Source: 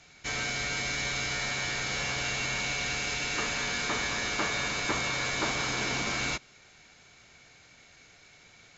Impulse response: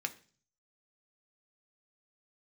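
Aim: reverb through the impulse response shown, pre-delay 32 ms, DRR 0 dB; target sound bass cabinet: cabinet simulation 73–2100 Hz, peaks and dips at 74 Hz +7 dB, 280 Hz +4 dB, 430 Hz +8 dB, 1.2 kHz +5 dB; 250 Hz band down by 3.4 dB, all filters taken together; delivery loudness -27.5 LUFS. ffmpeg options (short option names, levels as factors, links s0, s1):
-filter_complex "[0:a]equalizer=f=250:t=o:g=-8.5,asplit=2[s0][s1];[1:a]atrim=start_sample=2205,adelay=32[s2];[s1][s2]afir=irnorm=-1:irlink=0,volume=0.794[s3];[s0][s3]amix=inputs=2:normalize=0,highpass=f=73:w=0.5412,highpass=f=73:w=1.3066,equalizer=f=74:t=q:w=4:g=7,equalizer=f=280:t=q:w=4:g=4,equalizer=f=430:t=q:w=4:g=8,equalizer=f=1200:t=q:w=4:g=5,lowpass=f=2100:w=0.5412,lowpass=f=2100:w=1.3066,volume=1.41"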